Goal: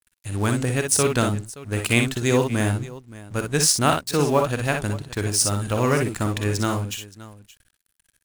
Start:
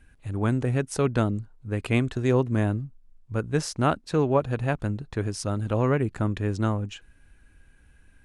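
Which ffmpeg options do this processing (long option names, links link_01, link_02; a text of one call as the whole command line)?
ffmpeg -i in.wav -af "aeval=exprs='sgn(val(0))*max(abs(val(0))-0.00398,0)':channel_layout=same,crystalizer=i=6:c=0,aecho=1:1:48|60|573:0.299|0.501|0.126,volume=1dB" out.wav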